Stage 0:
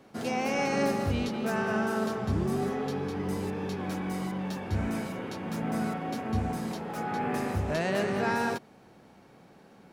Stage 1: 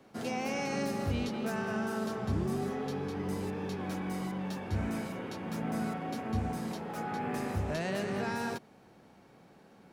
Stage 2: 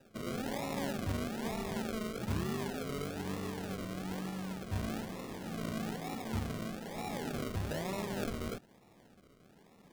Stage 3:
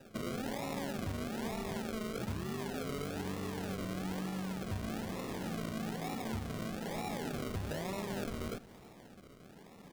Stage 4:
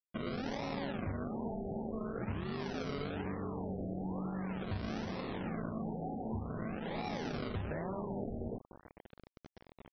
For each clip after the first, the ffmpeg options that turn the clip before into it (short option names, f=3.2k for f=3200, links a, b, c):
-filter_complex "[0:a]acrossover=split=250|3000[a][b][c];[b]acompressor=threshold=-30dB:ratio=6[d];[a][d][c]amix=inputs=3:normalize=0,volume=-3dB"
-af "acrusher=samples=40:mix=1:aa=0.000001:lfo=1:lforange=24:lforate=1.1,volume=-3.5dB"
-af "acompressor=threshold=-42dB:ratio=5,aecho=1:1:331:0.119,volume=6dB"
-af "acrusher=bits=7:mix=0:aa=0.000001,afftfilt=real='re*lt(b*sr/1024,850*pow(6200/850,0.5+0.5*sin(2*PI*0.45*pts/sr)))':imag='im*lt(b*sr/1024,850*pow(6200/850,0.5+0.5*sin(2*PI*0.45*pts/sr)))':win_size=1024:overlap=0.75"